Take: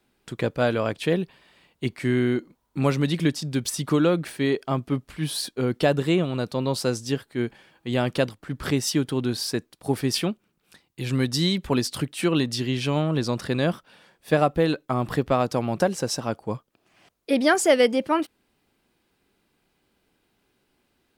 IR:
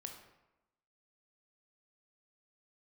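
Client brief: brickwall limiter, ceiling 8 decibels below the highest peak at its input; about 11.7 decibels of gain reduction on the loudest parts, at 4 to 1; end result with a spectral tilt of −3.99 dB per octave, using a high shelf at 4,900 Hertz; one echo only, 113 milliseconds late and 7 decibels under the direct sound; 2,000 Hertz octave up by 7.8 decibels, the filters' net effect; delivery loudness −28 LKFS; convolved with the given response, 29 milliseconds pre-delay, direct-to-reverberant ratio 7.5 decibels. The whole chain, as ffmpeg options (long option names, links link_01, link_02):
-filter_complex "[0:a]equalizer=frequency=2000:width_type=o:gain=8.5,highshelf=frequency=4900:gain=8,acompressor=threshold=-25dB:ratio=4,alimiter=limit=-19dB:level=0:latency=1,aecho=1:1:113:0.447,asplit=2[link_01][link_02];[1:a]atrim=start_sample=2205,adelay=29[link_03];[link_02][link_03]afir=irnorm=-1:irlink=0,volume=-3.5dB[link_04];[link_01][link_04]amix=inputs=2:normalize=0,volume=1dB"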